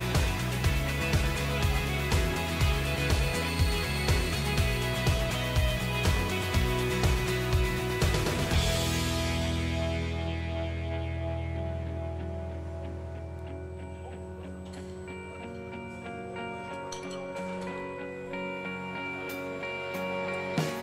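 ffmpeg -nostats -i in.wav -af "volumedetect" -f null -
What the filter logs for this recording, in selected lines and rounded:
mean_volume: -30.0 dB
max_volume: -15.3 dB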